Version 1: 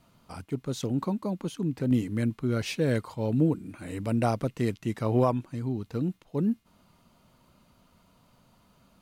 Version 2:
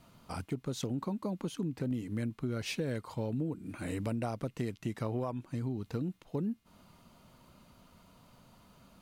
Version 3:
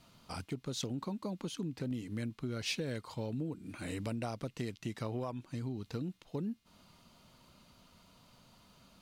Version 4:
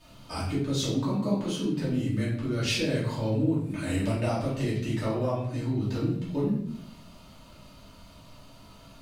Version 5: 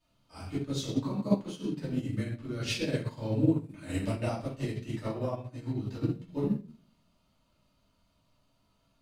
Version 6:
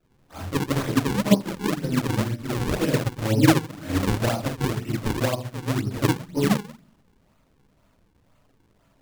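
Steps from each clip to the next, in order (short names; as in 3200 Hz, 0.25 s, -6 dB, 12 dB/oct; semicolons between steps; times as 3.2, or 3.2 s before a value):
compressor 6:1, threshold -34 dBFS, peak gain reduction 15 dB; gain +2 dB
bell 4400 Hz +7.5 dB 1.8 oct; gain -3.5 dB
shoebox room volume 140 m³, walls mixed, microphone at 2.7 m
upward expander 2.5:1, over -37 dBFS; gain +3 dB
decimation with a swept rate 40×, swing 160% 2 Hz; gain +8.5 dB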